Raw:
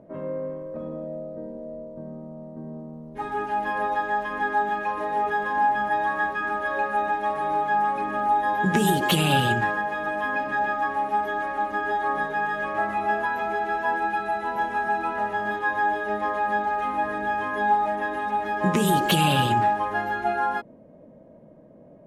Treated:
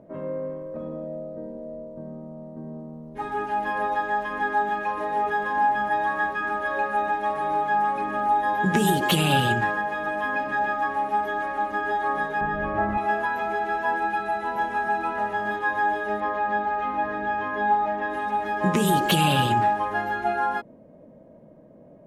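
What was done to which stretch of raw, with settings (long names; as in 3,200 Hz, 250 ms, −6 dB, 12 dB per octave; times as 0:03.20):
0:12.41–0:12.98: RIAA equalisation playback
0:16.20–0:18.10: high-frequency loss of the air 110 metres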